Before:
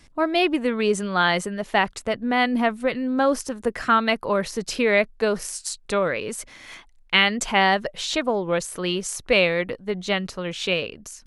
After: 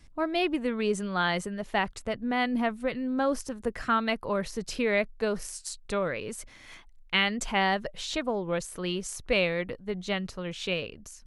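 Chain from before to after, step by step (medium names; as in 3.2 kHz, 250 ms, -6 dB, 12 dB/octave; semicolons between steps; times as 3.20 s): bass shelf 130 Hz +9.5 dB; trim -7.5 dB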